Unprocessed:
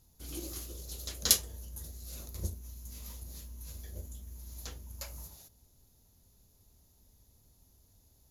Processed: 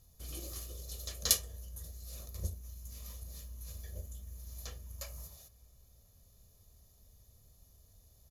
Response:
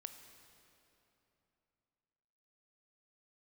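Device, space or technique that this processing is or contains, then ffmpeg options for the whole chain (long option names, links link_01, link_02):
ducked reverb: -filter_complex "[0:a]asplit=3[link_01][link_02][link_03];[1:a]atrim=start_sample=2205[link_04];[link_02][link_04]afir=irnorm=-1:irlink=0[link_05];[link_03]apad=whole_len=366258[link_06];[link_05][link_06]sidechaincompress=threshold=-47dB:ratio=8:attack=7.2:release=1390,volume=1.5dB[link_07];[link_01][link_07]amix=inputs=2:normalize=0,aecho=1:1:1.7:0.52,volume=-4.5dB"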